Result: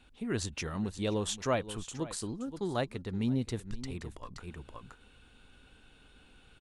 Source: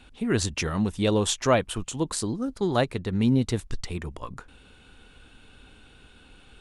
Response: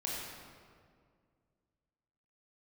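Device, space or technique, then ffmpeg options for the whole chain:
ducked delay: -filter_complex "[0:a]asplit=3[s0][s1][s2];[s1]adelay=524,volume=0.794[s3];[s2]apad=whole_len=314217[s4];[s3][s4]sidechaincompress=threshold=0.0112:ratio=8:attack=7.6:release=155[s5];[s0][s5]amix=inputs=2:normalize=0,volume=0.355"

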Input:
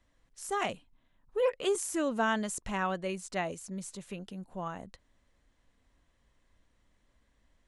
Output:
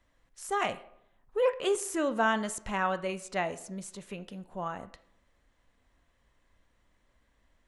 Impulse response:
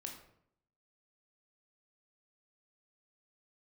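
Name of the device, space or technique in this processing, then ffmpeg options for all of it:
filtered reverb send: -filter_complex "[0:a]asplit=2[s0][s1];[s1]highpass=370,lowpass=3400[s2];[1:a]atrim=start_sample=2205[s3];[s2][s3]afir=irnorm=-1:irlink=0,volume=0.75[s4];[s0][s4]amix=inputs=2:normalize=0"

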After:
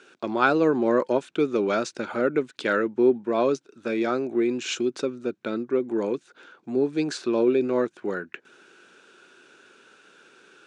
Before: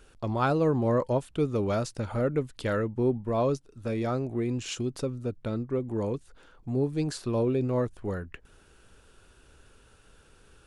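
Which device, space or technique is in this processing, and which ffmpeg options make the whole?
television speaker: -af "highpass=f=200:w=0.5412,highpass=f=200:w=1.3066,equalizer=f=360:t=q:w=4:g=7,equalizer=f=1500:t=q:w=4:g=9,equalizer=f=2400:t=q:w=4:g=7,equalizer=f=3700:t=q:w=4:g=5,equalizer=f=6200:t=q:w=4:g=3,lowpass=f=7900:w=0.5412,lowpass=f=7900:w=1.3066,volume=1.33"

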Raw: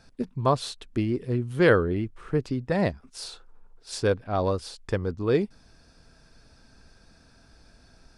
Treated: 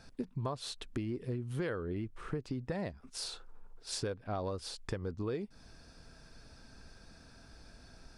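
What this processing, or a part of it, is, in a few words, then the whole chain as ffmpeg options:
serial compression, peaks first: -af "acompressor=threshold=0.0355:ratio=6,acompressor=threshold=0.00891:ratio=1.5"

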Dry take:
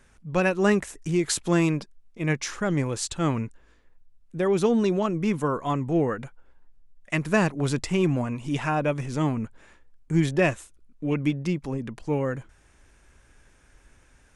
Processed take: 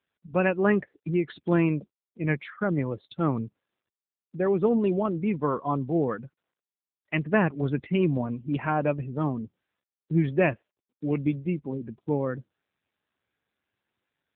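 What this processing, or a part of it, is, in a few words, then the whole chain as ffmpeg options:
mobile call with aggressive noise cancelling: -af "highpass=110,afftdn=nr=31:nf=-35" -ar 8000 -c:a libopencore_amrnb -b:a 7950

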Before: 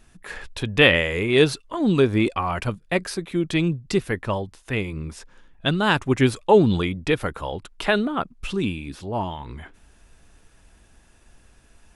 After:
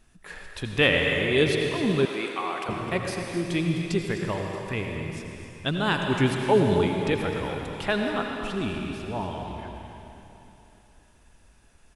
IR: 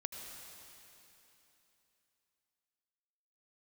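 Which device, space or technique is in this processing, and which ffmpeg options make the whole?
cave: -filter_complex "[0:a]aecho=1:1:257:0.251[s0];[1:a]atrim=start_sample=2205[s1];[s0][s1]afir=irnorm=-1:irlink=0,asettb=1/sr,asplit=3[s2][s3][s4];[s2]atrim=end=2.054[s5];[s3]atrim=start=2.05:end=2.69,asetpts=PTS-STARTPTS,afade=t=in:d=0.004:c=qsin,afade=t=out:st=0.636:d=0.004:c=qsin,highpass=510[s6];[s4]atrim=start=2.686[s7];[s5][s6]acrossfade=d=0.004:c1=hsin:c2=qsin[s8];[s8][s7]acrossfade=d=0.004:c1=qsin:c2=hsin,volume=0.75"

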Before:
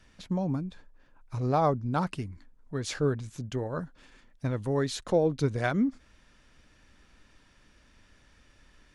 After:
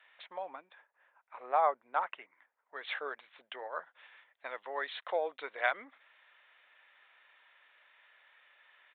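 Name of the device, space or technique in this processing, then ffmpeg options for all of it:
musical greeting card: -filter_complex "[0:a]aresample=8000,aresample=44100,highpass=f=650:w=0.5412,highpass=f=650:w=1.3066,equalizer=f=2000:t=o:w=0.36:g=6,asplit=3[s0][s1][s2];[s0]afade=t=out:st=0.68:d=0.02[s3];[s1]lowpass=2300,afade=t=in:st=0.68:d=0.02,afade=t=out:st=2.75:d=0.02[s4];[s2]afade=t=in:st=2.75:d=0.02[s5];[s3][s4][s5]amix=inputs=3:normalize=0"

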